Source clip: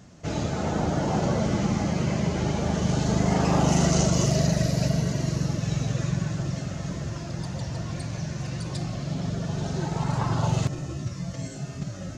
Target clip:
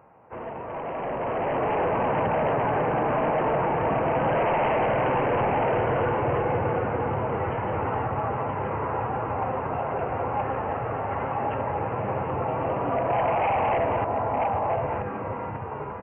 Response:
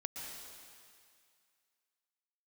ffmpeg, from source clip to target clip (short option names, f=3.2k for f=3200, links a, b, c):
-filter_complex "[0:a]asplit=2[a][b];[b]acompressor=threshold=-30dB:ratio=10,volume=-1dB[c];[a][c]amix=inputs=2:normalize=0,bandpass=f=1.1k:t=q:w=2.9:csg=0,aecho=1:1:742:0.473,asplit=3[d][e][f];[e]asetrate=33038,aresample=44100,atempo=1.33484,volume=-9dB[g];[f]asetrate=52444,aresample=44100,atempo=0.840896,volume=-17dB[h];[d][g][h]amix=inputs=3:normalize=0,aresample=8000,asoftclip=type=hard:threshold=-34.5dB,aresample=44100,alimiter=level_in=11.5dB:limit=-24dB:level=0:latency=1,volume=-11.5dB,dynaudnorm=f=160:g=13:m=11dB,asetrate=33516,aresample=44100,volume=5.5dB"